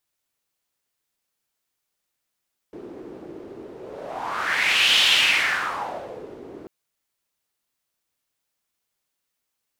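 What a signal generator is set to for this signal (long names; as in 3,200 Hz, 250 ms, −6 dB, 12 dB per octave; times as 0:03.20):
pass-by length 3.94 s, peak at 0:02.29, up 1.40 s, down 1.45 s, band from 370 Hz, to 3,100 Hz, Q 3.7, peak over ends 22 dB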